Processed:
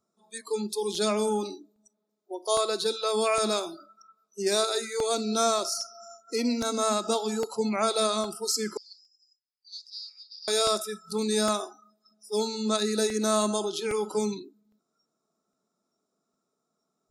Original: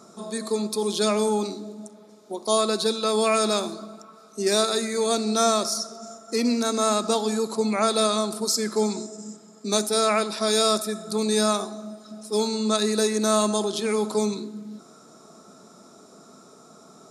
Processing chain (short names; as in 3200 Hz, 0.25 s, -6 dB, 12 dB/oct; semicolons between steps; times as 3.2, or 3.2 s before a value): spectral noise reduction 27 dB; 8.77–10.48 Butterworth band-pass 4700 Hz, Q 6.8; crackling interface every 0.81 s, samples 64, repeat, from 0.95; gain -3.5 dB